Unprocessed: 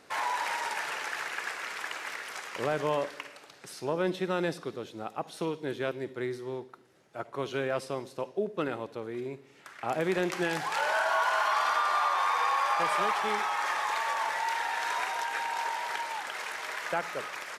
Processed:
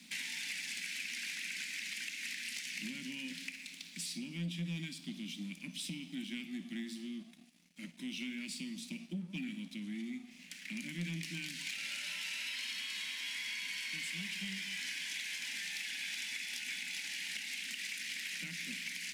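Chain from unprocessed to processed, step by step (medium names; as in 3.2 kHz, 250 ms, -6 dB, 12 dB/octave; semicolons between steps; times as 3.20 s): elliptic band-stop 250–2500 Hz, stop band 40 dB; compression 6:1, threshold -46 dBFS, peak gain reduction 12 dB; rippled Chebyshev high-pass 180 Hz, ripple 3 dB; speed mistake 48 kHz file played as 44.1 kHz; on a send at -13 dB: reverberation RT60 0.75 s, pre-delay 6 ms; on the sum: waveshaping leveller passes 2; trim +3.5 dB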